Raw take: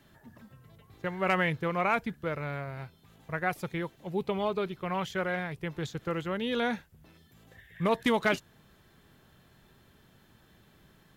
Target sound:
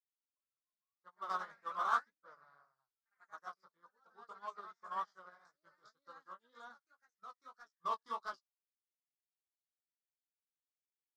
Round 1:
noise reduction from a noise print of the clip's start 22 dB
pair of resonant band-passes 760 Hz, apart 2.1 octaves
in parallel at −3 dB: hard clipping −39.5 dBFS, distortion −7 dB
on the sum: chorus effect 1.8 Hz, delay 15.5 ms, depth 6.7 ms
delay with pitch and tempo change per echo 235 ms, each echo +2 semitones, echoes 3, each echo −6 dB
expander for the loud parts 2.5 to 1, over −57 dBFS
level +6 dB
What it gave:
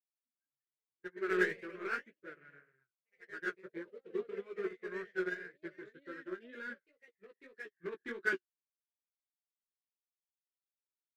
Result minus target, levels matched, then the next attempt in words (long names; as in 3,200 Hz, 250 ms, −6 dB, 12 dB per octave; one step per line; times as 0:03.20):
1,000 Hz band −10.5 dB
noise reduction from a noise print of the clip's start 22 dB
pair of resonant band-passes 2,400 Hz, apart 2.1 octaves
in parallel at −3 dB: hard clipping −39.5 dBFS, distortion −8 dB
on the sum: chorus effect 1.8 Hz, delay 15.5 ms, depth 6.7 ms
delay with pitch and tempo change per echo 235 ms, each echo +2 semitones, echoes 3, each echo −6 dB
expander for the loud parts 2.5 to 1, over −57 dBFS
level +6 dB